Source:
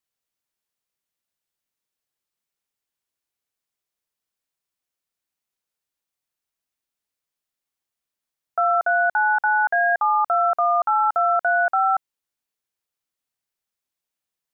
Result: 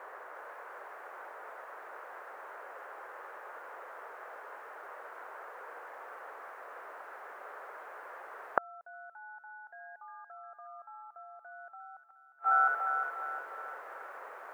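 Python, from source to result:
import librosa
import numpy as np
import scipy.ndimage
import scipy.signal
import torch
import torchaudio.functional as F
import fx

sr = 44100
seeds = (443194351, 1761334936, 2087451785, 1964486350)

y = fx.dmg_noise_band(x, sr, seeds[0], low_hz=430.0, high_hz=1600.0, level_db=-59.0)
y = fx.echo_wet_highpass(y, sr, ms=355, feedback_pct=46, hz=1700.0, wet_db=-4.0)
y = fx.gate_flip(y, sr, shuts_db=-25.0, range_db=-42)
y = y * librosa.db_to_amplitude(11.5)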